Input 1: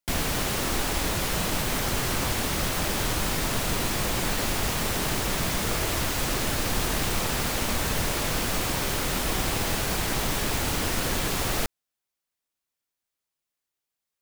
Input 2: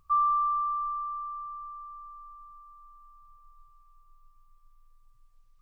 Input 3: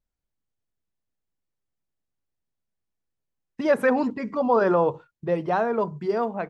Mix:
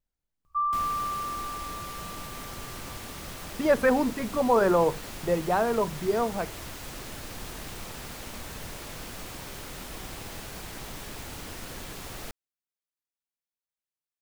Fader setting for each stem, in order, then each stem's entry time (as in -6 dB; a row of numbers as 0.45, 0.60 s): -13.0, -2.5, -1.5 dB; 0.65, 0.45, 0.00 s